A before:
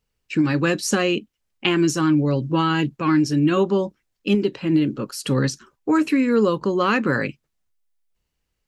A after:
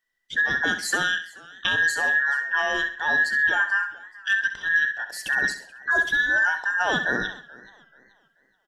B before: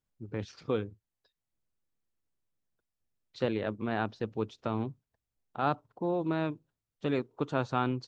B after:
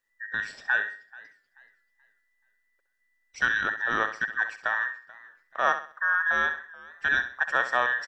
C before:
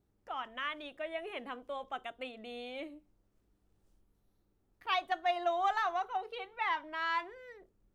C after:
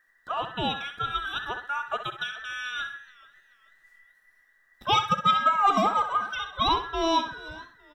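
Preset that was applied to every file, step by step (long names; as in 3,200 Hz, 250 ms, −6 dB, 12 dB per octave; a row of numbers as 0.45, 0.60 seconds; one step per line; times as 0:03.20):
frequency inversion band by band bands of 2,000 Hz
on a send: repeating echo 65 ms, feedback 34%, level −10.5 dB
on the sum: feedback echo with a swinging delay time 432 ms, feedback 33%, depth 105 cents, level −22 dB
normalise the peak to −9 dBFS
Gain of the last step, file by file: −4.0, +5.0, +9.5 decibels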